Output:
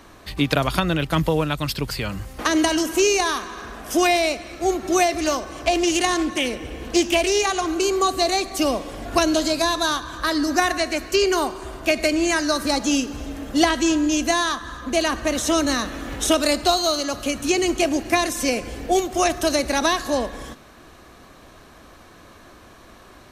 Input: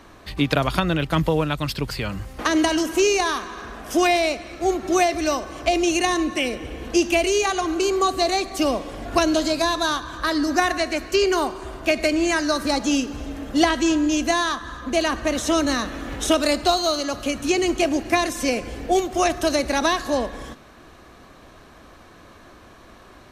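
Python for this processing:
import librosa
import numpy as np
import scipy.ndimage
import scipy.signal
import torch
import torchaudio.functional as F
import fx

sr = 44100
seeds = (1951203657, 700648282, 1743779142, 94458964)

y = fx.high_shelf(x, sr, hz=6100.0, db=6.0)
y = fx.doppler_dist(y, sr, depth_ms=0.18, at=(5.16, 7.69))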